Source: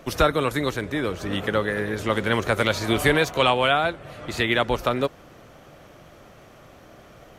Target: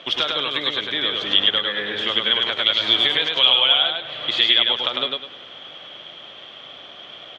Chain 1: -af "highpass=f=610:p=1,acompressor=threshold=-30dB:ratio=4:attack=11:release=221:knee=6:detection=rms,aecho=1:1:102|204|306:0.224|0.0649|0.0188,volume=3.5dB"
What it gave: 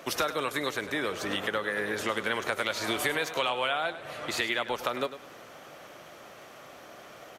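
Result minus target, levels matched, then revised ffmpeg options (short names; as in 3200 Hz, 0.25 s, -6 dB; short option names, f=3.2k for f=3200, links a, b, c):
4000 Hz band -7.5 dB; echo-to-direct -10 dB
-af "highpass=f=610:p=1,acompressor=threshold=-30dB:ratio=4:attack=11:release=221:knee=6:detection=rms,lowpass=f=3.3k:t=q:w=16,aecho=1:1:102|204|306|408:0.708|0.205|0.0595|0.0173,volume=3.5dB"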